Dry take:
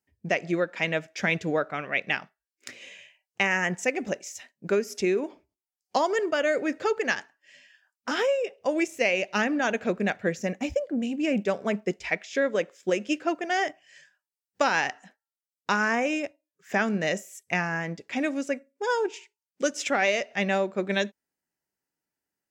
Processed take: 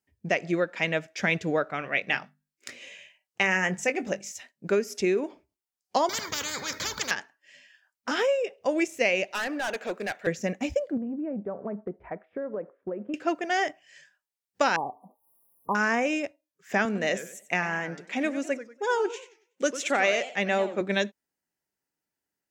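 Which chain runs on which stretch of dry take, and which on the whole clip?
1.79–4.32 notches 50/100/150/200/250 Hz + doubler 21 ms -11.5 dB
6.09–7.11 high shelf 8600 Hz +6.5 dB + fixed phaser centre 2700 Hz, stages 6 + spectral compressor 10:1
9.31–10.27 HPF 400 Hz + high shelf 7900 Hz +6.5 dB + hard clip -26 dBFS
10.97–13.14 LPF 1200 Hz 24 dB/oct + compressor, threshold -29 dBFS
14.76–15.75 tone controls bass -1 dB, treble +5 dB + upward compressor, threshold -42 dBFS + brick-wall FIR band-stop 1200–9700 Hz
16.85–20.81 HPF 200 Hz + notch 5000 Hz, Q 7.3 + warbling echo 94 ms, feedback 31%, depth 219 cents, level -13 dB
whole clip: dry

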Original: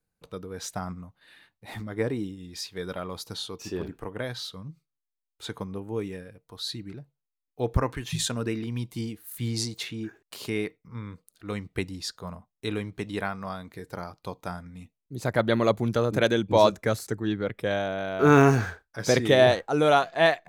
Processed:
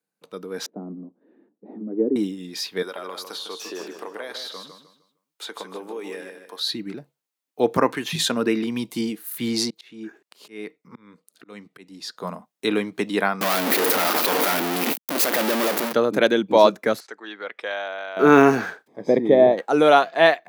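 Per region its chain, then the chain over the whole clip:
0.66–2.16 G.711 law mismatch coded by mu + Butterworth band-pass 300 Hz, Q 1.4
2.82–6.61 HPF 440 Hz + compressor 5:1, threshold -39 dBFS + feedback echo 0.153 s, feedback 31%, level -7.5 dB
9.7–12.21 high shelf 10000 Hz -4.5 dB + auto swell 0.642 s
13.41–15.93 infinite clipping + HPF 220 Hz 24 dB/oct + high shelf 8000 Hz +9 dB
17–18.17 HPF 820 Hz + compressor 1.5:1, threshold -37 dBFS + air absorption 120 m
18.86–19.57 G.711 law mismatch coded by A + added noise pink -56 dBFS + running mean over 31 samples
whole clip: HPF 200 Hz 24 dB/oct; dynamic EQ 7800 Hz, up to -8 dB, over -51 dBFS, Q 1.2; AGC gain up to 9.5 dB

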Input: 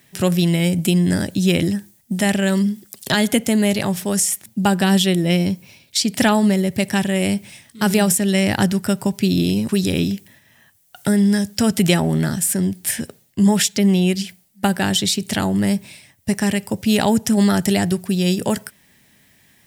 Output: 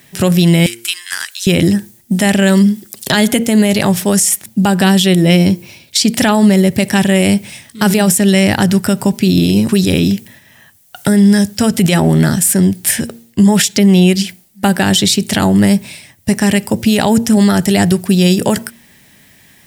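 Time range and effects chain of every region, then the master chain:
0.66–1.47 steep high-pass 1200 Hz + Doppler distortion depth 0.74 ms
whole clip: de-hum 116 Hz, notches 4; maximiser +10 dB; gain -1 dB

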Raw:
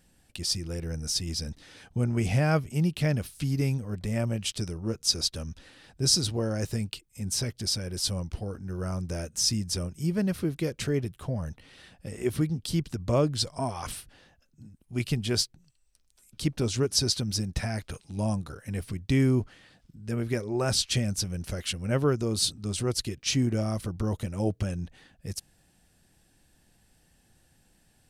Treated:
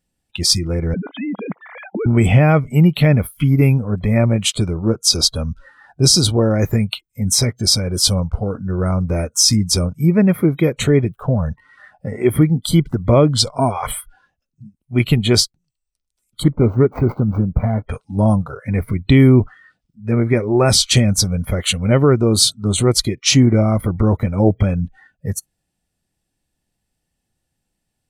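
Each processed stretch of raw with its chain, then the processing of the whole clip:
0.94–2.06 sine-wave speech + low shelf 270 Hz +6 dB + compressor 2.5:1, threshold -40 dBFS
16.43–17.89 median filter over 25 samples + high shelf 6000 Hz -10.5 dB
whole clip: notch 1600 Hz, Q 8.8; spectral noise reduction 25 dB; maximiser +15 dB; gain -1 dB

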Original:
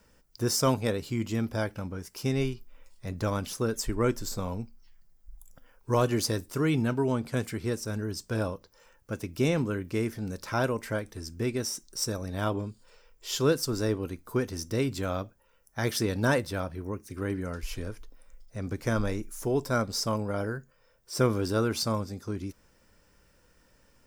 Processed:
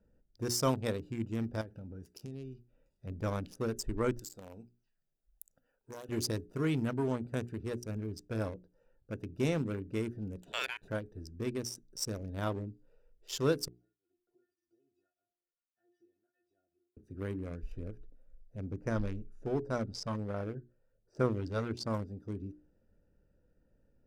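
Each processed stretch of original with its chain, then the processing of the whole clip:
1.61–3.07 HPF 43 Hz + high shelf 2900 Hz +9 dB + compressor 5:1, threshold -34 dBFS
4.19–6.09 tilt +4 dB/oct + compressor, threshold -33 dBFS
10.42–10.88 HPF 420 Hz 6 dB/oct + ring modulator 2000 Hz + high shelf 3500 Hz +5.5 dB
13.68–16.97 compressor, threshold -41 dBFS + metallic resonator 350 Hz, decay 0.32 s, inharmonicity 0.002 + tape flanging out of phase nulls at 1.7 Hz, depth 1 ms
18.66–21.93 LFO notch sine 1.3 Hz 290–3600 Hz + air absorption 64 m
whole clip: Wiener smoothing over 41 samples; notches 60/120/180/240/300/360/420 Hz; gain -4.5 dB

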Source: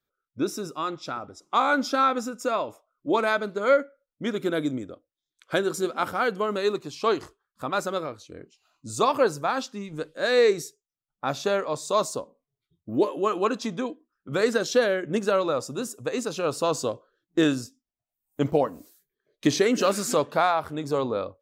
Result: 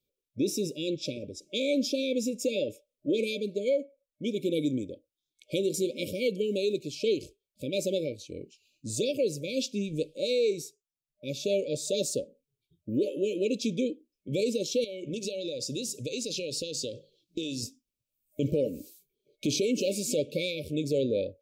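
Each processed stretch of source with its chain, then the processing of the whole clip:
14.84–17.63 bell 4500 Hz +11 dB 1.4 oct + notches 50/100/150/200 Hz + compressor 16:1, threshold -33 dBFS
whole clip: FFT band-reject 610–2200 Hz; vocal rider within 4 dB 0.5 s; limiter -19 dBFS

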